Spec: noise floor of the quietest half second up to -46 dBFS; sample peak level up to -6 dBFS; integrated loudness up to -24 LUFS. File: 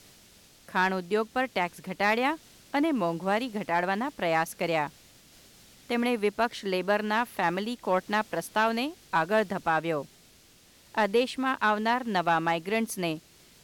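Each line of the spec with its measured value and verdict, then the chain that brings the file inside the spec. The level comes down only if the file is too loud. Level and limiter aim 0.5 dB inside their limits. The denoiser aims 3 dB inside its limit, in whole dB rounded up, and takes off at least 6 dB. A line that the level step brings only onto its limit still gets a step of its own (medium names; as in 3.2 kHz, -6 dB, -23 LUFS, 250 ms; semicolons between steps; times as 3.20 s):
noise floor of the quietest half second -58 dBFS: pass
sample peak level -14.5 dBFS: pass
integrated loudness -28.0 LUFS: pass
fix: none needed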